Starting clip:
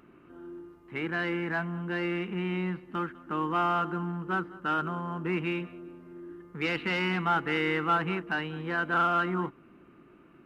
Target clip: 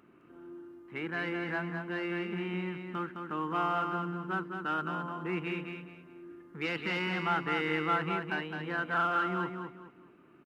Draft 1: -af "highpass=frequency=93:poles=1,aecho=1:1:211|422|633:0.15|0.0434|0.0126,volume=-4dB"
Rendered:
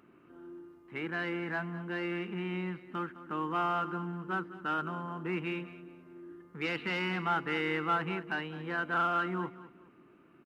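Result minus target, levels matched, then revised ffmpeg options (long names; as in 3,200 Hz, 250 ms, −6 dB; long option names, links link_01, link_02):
echo-to-direct −10.5 dB
-af "highpass=frequency=93:poles=1,aecho=1:1:211|422|633|844:0.501|0.145|0.0421|0.0122,volume=-4dB"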